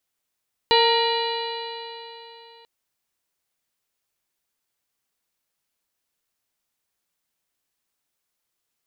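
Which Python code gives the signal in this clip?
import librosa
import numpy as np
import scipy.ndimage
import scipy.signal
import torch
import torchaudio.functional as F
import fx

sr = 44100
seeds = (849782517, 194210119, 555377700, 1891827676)

y = fx.additive_stiff(sr, length_s=1.94, hz=460.0, level_db=-18.0, upper_db=(0.5, -18.0, -8, -10.0, -4.5, -14, -2.0, -14.5), decay_s=3.34, stiffness=0.003)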